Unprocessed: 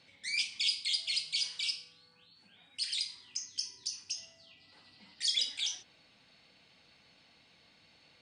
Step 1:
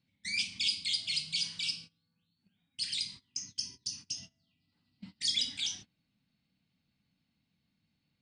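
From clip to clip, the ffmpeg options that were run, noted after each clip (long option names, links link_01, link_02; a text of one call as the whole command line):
ffmpeg -i in.wav -af "lowshelf=frequency=320:width_type=q:width=1.5:gain=13.5,agate=range=-21dB:threshold=-47dB:ratio=16:detection=peak" out.wav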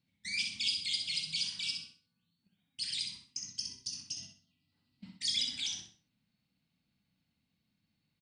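ffmpeg -i in.wav -af "aecho=1:1:64|128|192|256:0.531|0.17|0.0544|0.0174,volume=-2.5dB" out.wav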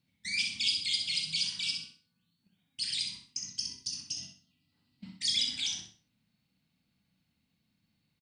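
ffmpeg -i in.wav -filter_complex "[0:a]asplit=2[link_01][link_02];[link_02]adelay=37,volume=-13dB[link_03];[link_01][link_03]amix=inputs=2:normalize=0,volume=3dB" out.wav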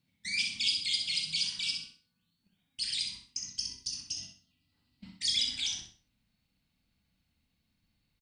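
ffmpeg -i in.wav -af "asubboost=boost=7:cutoff=55" out.wav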